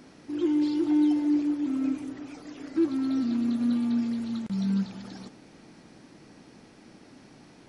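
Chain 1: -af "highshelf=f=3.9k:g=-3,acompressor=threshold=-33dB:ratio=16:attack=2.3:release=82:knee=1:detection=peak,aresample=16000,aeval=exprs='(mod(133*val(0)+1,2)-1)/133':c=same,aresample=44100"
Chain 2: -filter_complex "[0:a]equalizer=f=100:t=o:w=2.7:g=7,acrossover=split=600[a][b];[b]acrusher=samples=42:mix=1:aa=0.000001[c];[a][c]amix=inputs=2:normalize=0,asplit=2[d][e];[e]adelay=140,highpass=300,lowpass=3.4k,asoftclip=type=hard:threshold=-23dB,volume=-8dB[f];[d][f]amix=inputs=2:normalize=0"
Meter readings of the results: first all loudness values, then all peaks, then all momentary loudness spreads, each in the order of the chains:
-46.0, -24.0 LUFS; -37.5, -13.0 dBFS; 8, 16 LU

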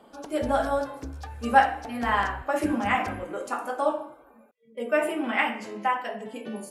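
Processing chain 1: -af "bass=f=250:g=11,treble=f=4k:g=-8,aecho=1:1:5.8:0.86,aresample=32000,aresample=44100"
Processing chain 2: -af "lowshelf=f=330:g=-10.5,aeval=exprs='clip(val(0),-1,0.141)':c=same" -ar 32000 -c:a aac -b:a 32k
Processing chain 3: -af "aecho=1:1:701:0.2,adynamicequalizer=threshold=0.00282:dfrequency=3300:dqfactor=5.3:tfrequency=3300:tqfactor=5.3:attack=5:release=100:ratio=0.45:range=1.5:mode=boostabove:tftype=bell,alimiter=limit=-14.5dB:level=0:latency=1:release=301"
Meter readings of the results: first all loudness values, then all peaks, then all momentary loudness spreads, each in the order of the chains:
-24.5, -28.5, -29.0 LUFS; -4.0, -6.5, -14.5 dBFS; 11, 16, 10 LU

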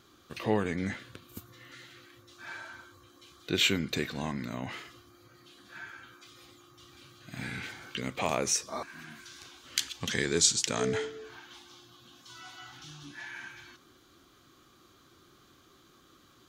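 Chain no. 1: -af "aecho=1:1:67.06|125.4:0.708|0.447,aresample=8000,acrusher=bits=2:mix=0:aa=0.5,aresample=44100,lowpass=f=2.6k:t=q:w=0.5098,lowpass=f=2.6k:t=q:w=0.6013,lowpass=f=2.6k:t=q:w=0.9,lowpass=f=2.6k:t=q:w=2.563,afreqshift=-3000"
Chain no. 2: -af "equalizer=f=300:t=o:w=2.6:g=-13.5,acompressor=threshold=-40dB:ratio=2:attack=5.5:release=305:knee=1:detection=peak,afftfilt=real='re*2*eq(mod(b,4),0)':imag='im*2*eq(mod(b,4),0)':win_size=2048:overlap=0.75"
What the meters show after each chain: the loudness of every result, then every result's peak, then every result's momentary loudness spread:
-36.0, -45.0 LUFS; -12.5, -21.0 dBFS; 22, 24 LU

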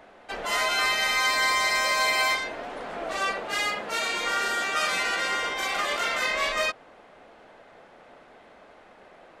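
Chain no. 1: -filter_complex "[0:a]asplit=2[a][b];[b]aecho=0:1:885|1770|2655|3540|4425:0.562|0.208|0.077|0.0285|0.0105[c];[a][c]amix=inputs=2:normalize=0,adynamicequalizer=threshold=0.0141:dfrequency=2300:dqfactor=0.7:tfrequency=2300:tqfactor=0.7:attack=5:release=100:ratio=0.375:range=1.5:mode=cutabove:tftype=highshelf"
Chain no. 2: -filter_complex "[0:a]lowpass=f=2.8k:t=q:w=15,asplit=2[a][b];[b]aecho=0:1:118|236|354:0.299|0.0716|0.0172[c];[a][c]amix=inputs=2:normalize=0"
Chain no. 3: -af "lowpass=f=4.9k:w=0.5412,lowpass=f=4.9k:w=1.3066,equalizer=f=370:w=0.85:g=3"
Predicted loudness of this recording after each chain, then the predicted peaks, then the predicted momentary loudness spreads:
-25.5, -15.0, -25.0 LUFS; -12.0, -3.0, -12.5 dBFS; 16, 12, 10 LU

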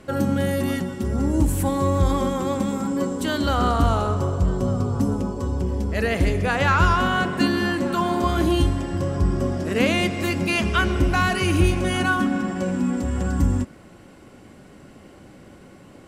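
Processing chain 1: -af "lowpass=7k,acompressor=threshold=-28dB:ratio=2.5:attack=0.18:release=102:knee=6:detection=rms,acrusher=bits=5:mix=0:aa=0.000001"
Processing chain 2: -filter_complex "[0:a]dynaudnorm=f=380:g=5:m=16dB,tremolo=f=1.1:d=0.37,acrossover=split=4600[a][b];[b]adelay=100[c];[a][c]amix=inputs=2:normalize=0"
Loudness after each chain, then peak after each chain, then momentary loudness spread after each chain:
-30.0, -16.5 LUFS; -20.5, -1.5 dBFS; 2, 11 LU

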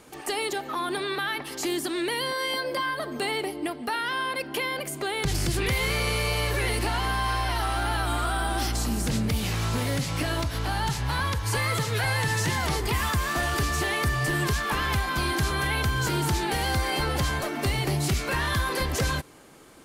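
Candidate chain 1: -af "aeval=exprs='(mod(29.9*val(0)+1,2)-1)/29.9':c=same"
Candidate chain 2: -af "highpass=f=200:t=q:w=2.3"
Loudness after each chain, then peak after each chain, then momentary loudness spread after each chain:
-31.5, -26.5 LUFS; -29.5, -12.0 dBFS; 1, 3 LU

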